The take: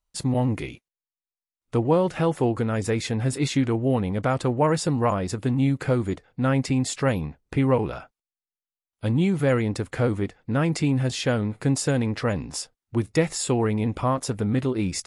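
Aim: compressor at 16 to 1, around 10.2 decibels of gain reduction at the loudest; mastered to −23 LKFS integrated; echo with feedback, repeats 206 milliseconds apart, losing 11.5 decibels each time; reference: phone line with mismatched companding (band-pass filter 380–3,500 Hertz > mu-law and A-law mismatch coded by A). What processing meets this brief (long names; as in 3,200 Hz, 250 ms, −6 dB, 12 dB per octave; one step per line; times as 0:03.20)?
downward compressor 16 to 1, threshold −26 dBFS
band-pass filter 380–3,500 Hz
repeating echo 206 ms, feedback 27%, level −11.5 dB
mu-law and A-law mismatch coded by A
level +16 dB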